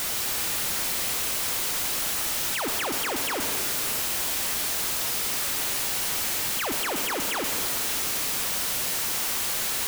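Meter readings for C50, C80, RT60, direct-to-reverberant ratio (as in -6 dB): 4.5 dB, 5.5 dB, 2.5 s, 4.0 dB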